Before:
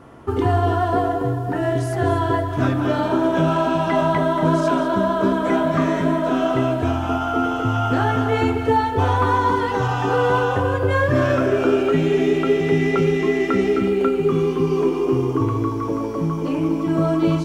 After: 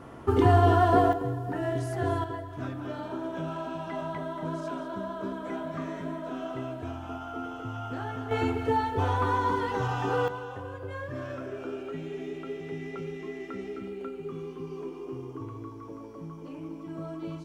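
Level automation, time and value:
−1.5 dB
from 0:01.13 −9 dB
from 0:02.24 −16 dB
from 0:08.31 −8.5 dB
from 0:10.28 −19 dB

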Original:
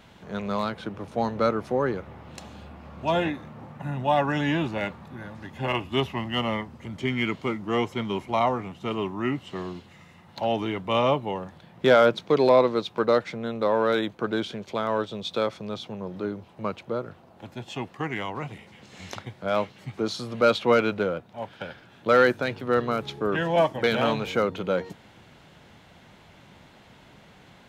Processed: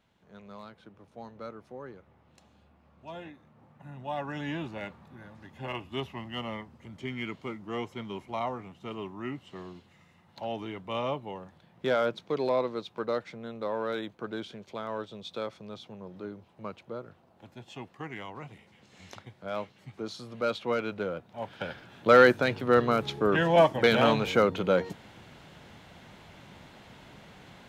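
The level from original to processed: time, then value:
0:03.36 −18.5 dB
0:04.50 −9.5 dB
0:20.82 −9.5 dB
0:21.69 +1 dB

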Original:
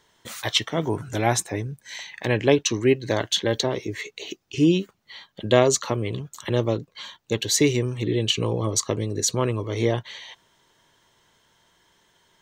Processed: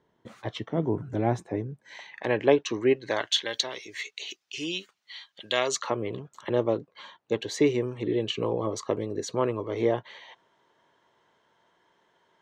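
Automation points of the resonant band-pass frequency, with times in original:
resonant band-pass, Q 0.59
0:01.38 240 Hz
0:02.16 760 Hz
0:02.87 760 Hz
0:03.54 3,600 Hz
0:05.56 3,600 Hz
0:06.00 650 Hz

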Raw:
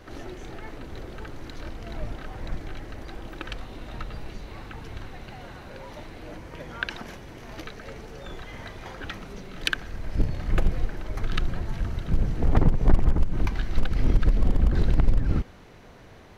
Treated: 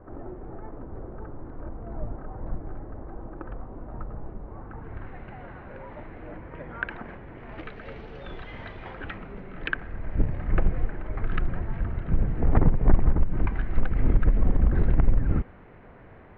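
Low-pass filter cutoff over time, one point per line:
low-pass filter 24 dB per octave
0:04.58 1,200 Hz
0:05.09 2,100 Hz
0:07.29 2,100 Hz
0:07.96 3,400 Hz
0:08.63 3,400 Hz
0:09.40 2,200 Hz

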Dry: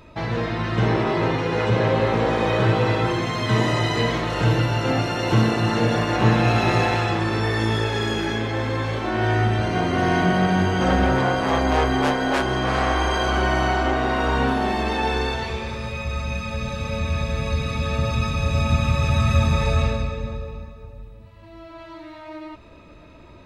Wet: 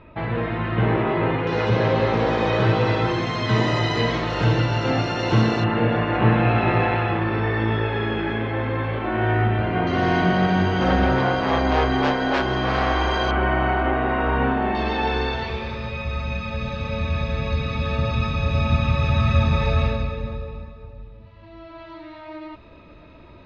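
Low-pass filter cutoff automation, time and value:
low-pass filter 24 dB per octave
3,000 Hz
from 0:01.47 5,800 Hz
from 0:05.64 2,900 Hz
from 0:09.87 5,100 Hz
from 0:13.31 2,700 Hz
from 0:14.75 4,600 Hz

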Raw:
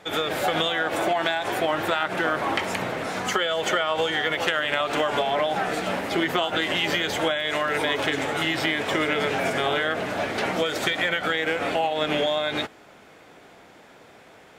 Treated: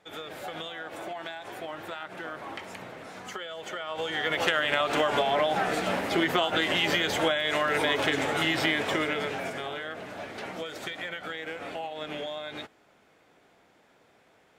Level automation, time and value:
0:03.71 −14 dB
0:04.39 −1.5 dB
0:08.76 −1.5 dB
0:09.72 −12 dB

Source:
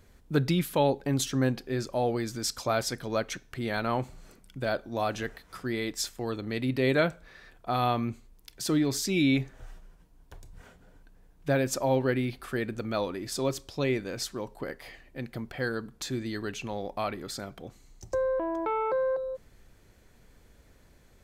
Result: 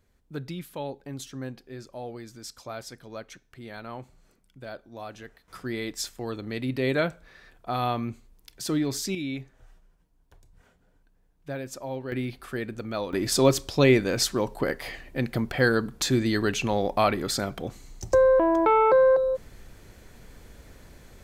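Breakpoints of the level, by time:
−10 dB
from 0:05.48 −0.5 dB
from 0:09.15 −8.5 dB
from 0:12.12 −1 dB
from 0:13.13 +9.5 dB

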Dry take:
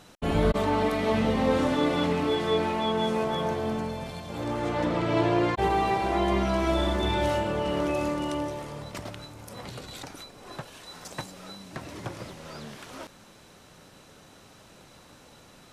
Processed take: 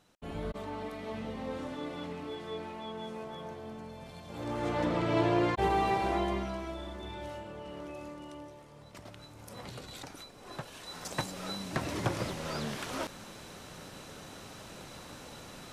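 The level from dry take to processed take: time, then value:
0:03.76 −14.5 dB
0:04.67 −3.5 dB
0:06.09 −3.5 dB
0:06.77 −16 dB
0:08.68 −16 dB
0:09.49 −4.5 dB
0:10.36 −4.5 dB
0:11.56 +5 dB

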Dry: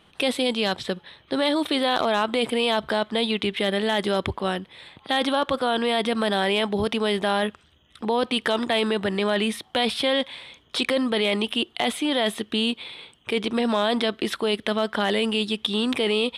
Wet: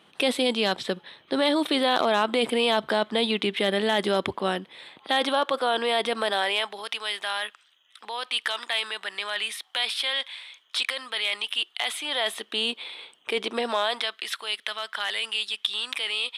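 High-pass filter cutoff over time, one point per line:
0:04.53 190 Hz
0:05.45 400 Hz
0:06.14 400 Hz
0:06.92 1,300 Hz
0:11.74 1,300 Hz
0:12.76 420 Hz
0:13.59 420 Hz
0:14.18 1,400 Hz

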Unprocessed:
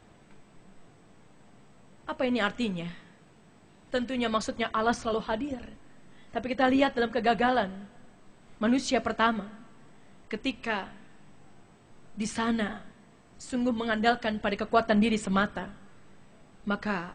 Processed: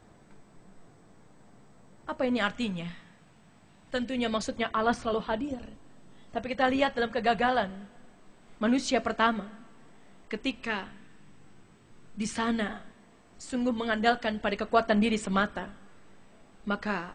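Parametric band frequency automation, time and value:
parametric band −6 dB 0.79 octaves
2,800 Hz
from 0:02.37 390 Hz
from 0:03.99 1,200 Hz
from 0:04.58 6,400 Hz
from 0:05.39 2,000 Hz
from 0:06.38 310 Hz
from 0:07.70 110 Hz
from 0:10.65 700 Hz
from 0:12.33 130 Hz

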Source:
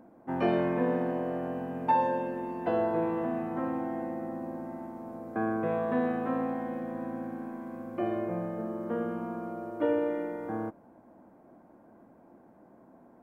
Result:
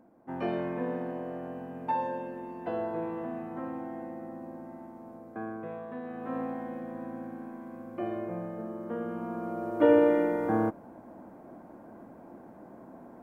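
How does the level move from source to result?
0:05.09 −5 dB
0:06.02 −12 dB
0:06.37 −3 dB
0:09.00 −3 dB
0:09.96 +7.5 dB

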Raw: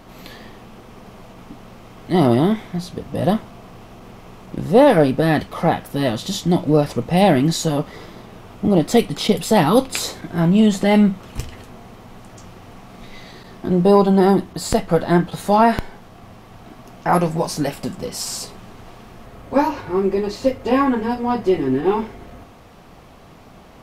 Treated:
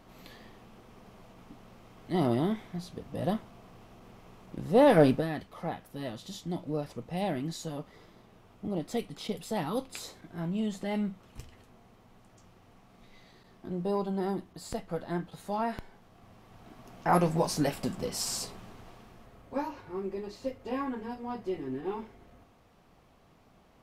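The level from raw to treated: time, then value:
0:04.63 −12.5 dB
0:05.10 −5 dB
0:05.29 −18 dB
0:15.74 −18 dB
0:17.35 −6.5 dB
0:18.40 −6.5 dB
0:19.65 −17 dB

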